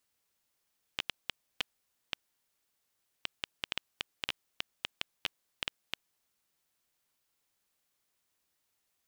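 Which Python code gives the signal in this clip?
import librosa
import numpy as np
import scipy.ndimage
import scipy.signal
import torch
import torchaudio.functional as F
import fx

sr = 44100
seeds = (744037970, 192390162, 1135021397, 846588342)

y = fx.geiger_clicks(sr, seeds[0], length_s=5.12, per_s=4.6, level_db=-13.5)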